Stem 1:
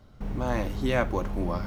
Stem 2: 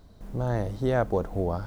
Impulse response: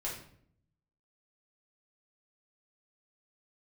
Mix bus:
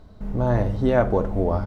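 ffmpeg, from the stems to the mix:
-filter_complex "[0:a]lowpass=frequency=1400:poles=1,aecho=1:1:4.7:0.96,volume=-5.5dB[link_01];[1:a]lowpass=frequency=2900:poles=1,volume=3dB,asplit=2[link_02][link_03];[link_03]volume=-9.5dB[link_04];[2:a]atrim=start_sample=2205[link_05];[link_04][link_05]afir=irnorm=-1:irlink=0[link_06];[link_01][link_02][link_06]amix=inputs=3:normalize=0"

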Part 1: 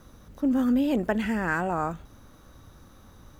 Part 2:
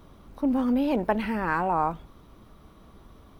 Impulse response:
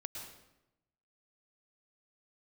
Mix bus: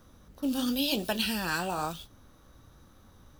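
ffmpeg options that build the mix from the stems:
-filter_complex "[0:a]volume=-1dB[link_01];[1:a]agate=range=-26dB:threshold=-40dB:ratio=16:detection=peak,highshelf=frequency=2000:width_type=q:width=1.5:gain=12.5,aexciter=amount=10.4:drive=7.8:freq=2700,volume=-1,volume=-15dB[link_02];[link_01][link_02]amix=inputs=2:normalize=0,flanger=delay=9.1:depth=9.6:regen=-59:speed=0.97:shape=triangular"

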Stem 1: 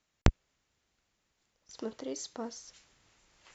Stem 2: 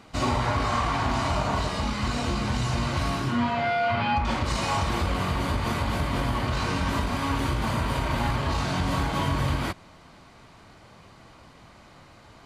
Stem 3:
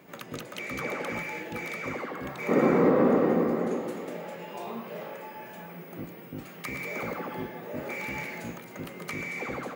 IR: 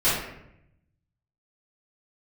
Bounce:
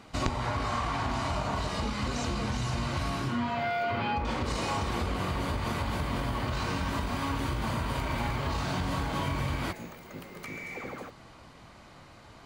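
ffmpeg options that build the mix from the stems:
-filter_complex "[0:a]volume=0.5dB,asplit=2[link_01][link_02];[1:a]volume=-1dB[link_03];[2:a]alimiter=limit=-23dB:level=0:latency=1,adelay=1350,volume=-5dB[link_04];[link_02]apad=whole_len=489804[link_05];[link_04][link_05]sidechaincompress=threshold=-60dB:ratio=8:attack=16:release=774[link_06];[link_01][link_03][link_06]amix=inputs=3:normalize=0,acompressor=threshold=-29dB:ratio=2.5"

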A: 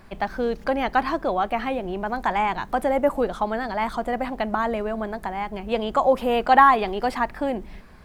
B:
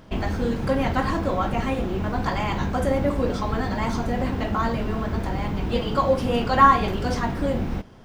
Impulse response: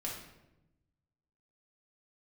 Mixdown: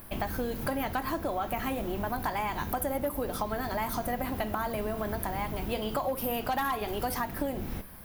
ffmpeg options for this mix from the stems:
-filter_complex "[0:a]aexciter=amount=15.3:drive=8.2:freq=10000,volume=-3dB[link_01];[1:a]aemphasis=mode=production:type=50kf,volume=-8.5dB[link_02];[link_01][link_02]amix=inputs=2:normalize=0,asoftclip=type=hard:threshold=-14.5dB,acompressor=threshold=-28dB:ratio=6"

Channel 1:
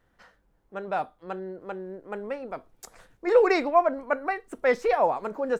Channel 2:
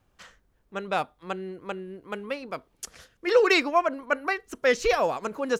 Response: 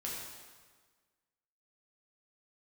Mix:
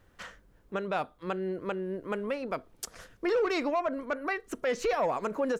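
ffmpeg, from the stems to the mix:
-filter_complex "[0:a]equalizer=frequency=800:width=7.1:gain=-9.5,asoftclip=type=tanh:threshold=-20.5dB,volume=2.5dB,asplit=2[link_01][link_02];[1:a]volume=1.5dB[link_03];[link_02]apad=whole_len=246734[link_04];[link_03][link_04]sidechaincompress=threshold=-27dB:ratio=8:attack=16:release=133[link_05];[link_01][link_05]amix=inputs=2:normalize=0,alimiter=limit=-21dB:level=0:latency=1:release=411"

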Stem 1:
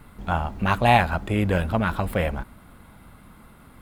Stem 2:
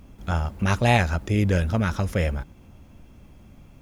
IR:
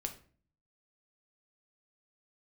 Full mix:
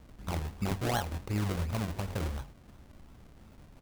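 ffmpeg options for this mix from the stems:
-filter_complex "[0:a]equalizer=frequency=180:width_type=o:width=1:gain=-12.5,volume=-14.5dB,asplit=2[link_01][link_02];[1:a]adelay=0.4,volume=-5.5dB[link_03];[link_02]apad=whole_len=168313[link_04];[link_03][link_04]sidechaincompress=threshold=-45dB:ratio=3:attack=39:release=431[link_05];[link_01][link_05]amix=inputs=2:normalize=0,equalizer=frequency=7100:width=0.4:gain=6.5,bandreject=frequency=46.7:width_type=h:width=4,bandreject=frequency=93.4:width_type=h:width=4,bandreject=frequency=140.1:width_type=h:width=4,bandreject=frequency=186.8:width_type=h:width=4,bandreject=frequency=233.5:width_type=h:width=4,bandreject=frequency=280.2:width_type=h:width=4,bandreject=frequency=326.9:width_type=h:width=4,bandreject=frequency=373.6:width_type=h:width=4,bandreject=frequency=420.3:width_type=h:width=4,bandreject=frequency=467:width_type=h:width=4,bandreject=frequency=513.7:width_type=h:width=4,bandreject=frequency=560.4:width_type=h:width=4,bandreject=frequency=607.1:width_type=h:width=4,bandreject=frequency=653.8:width_type=h:width=4,bandreject=frequency=700.5:width_type=h:width=4,bandreject=frequency=747.2:width_type=h:width=4,bandreject=frequency=793.9:width_type=h:width=4,bandreject=frequency=840.6:width_type=h:width=4,bandreject=frequency=887.3:width_type=h:width=4,bandreject=frequency=934:width_type=h:width=4,bandreject=frequency=980.7:width_type=h:width=4,bandreject=frequency=1027.4:width_type=h:width=4,bandreject=frequency=1074.1:width_type=h:width=4,bandreject=frequency=1120.8:width_type=h:width=4,bandreject=frequency=1167.5:width_type=h:width=4,acrusher=samples=35:mix=1:aa=0.000001:lfo=1:lforange=35:lforate=2.8"

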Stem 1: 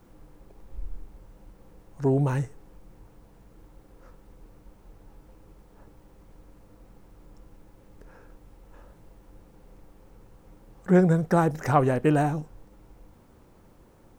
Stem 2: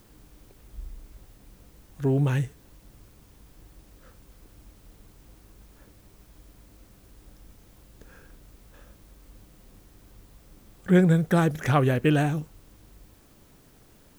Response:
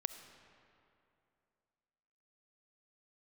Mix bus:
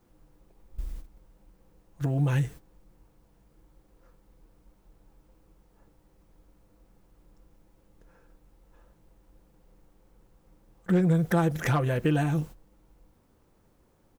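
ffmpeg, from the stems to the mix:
-filter_complex "[0:a]volume=-9.5dB,asplit=2[link_01][link_02];[1:a]agate=range=-21dB:threshold=-41dB:ratio=16:detection=peak,volume=13.5dB,asoftclip=hard,volume=-13.5dB,adelay=5.7,volume=3dB[link_03];[link_02]apad=whole_len=625857[link_04];[link_03][link_04]sidechaincompress=threshold=-37dB:ratio=8:attack=22:release=184[link_05];[link_01][link_05]amix=inputs=2:normalize=0"

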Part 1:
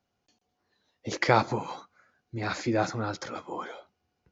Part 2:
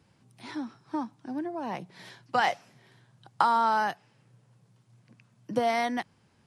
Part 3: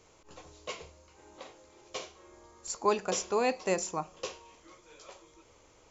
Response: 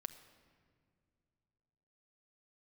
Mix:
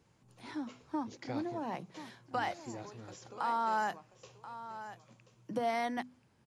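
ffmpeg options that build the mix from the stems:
-filter_complex "[0:a]equalizer=frequency=1300:width_type=o:width=1.9:gain=-10,volume=-16.5dB[link_01];[1:a]equalizer=frequency=4600:width=0.42:gain=-3,alimiter=limit=-19.5dB:level=0:latency=1:release=142,bandreject=frequency=50:width_type=h:width=6,bandreject=frequency=100:width_type=h:width=6,bandreject=frequency=150:width_type=h:width=6,bandreject=frequency=200:width_type=h:width=6,bandreject=frequency=250:width_type=h:width=6,volume=-4dB,asplit=2[link_02][link_03];[link_03]volume=-13dB[link_04];[2:a]acompressor=threshold=-32dB:ratio=6,volume=-16.5dB,asplit=2[link_05][link_06];[link_06]volume=-12.5dB[link_07];[link_04][link_07]amix=inputs=2:normalize=0,aecho=0:1:1033:1[link_08];[link_01][link_02][link_05][link_08]amix=inputs=4:normalize=0"

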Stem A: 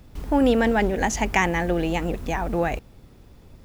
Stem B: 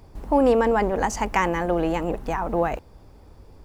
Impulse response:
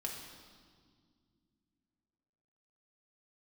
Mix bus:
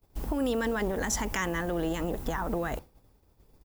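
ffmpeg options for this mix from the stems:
-filter_complex "[0:a]aemphasis=mode=production:type=75kf,volume=-5.5dB[link_01];[1:a]alimiter=limit=-17.5dB:level=0:latency=1,acompressor=threshold=-30dB:ratio=3,adelay=1.1,volume=0.5dB,asplit=3[link_02][link_03][link_04];[link_03]volume=-18dB[link_05];[link_04]apad=whole_len=160558[link_06];[link_01][link_06]sidechaincompress=threshold=-36dB:ratio=8:attack=12:release=180[link_07];[2:a]atrim=start_sample=2205[link_08];[link_05][link_08]afir=irnorm=-1:irlink=0[link_09];[link_07][link_02][link_09]amix=inputs=3:normalize=0,agate=range=-33dB:threshold=-33dB:ratio=3:detection=peak"

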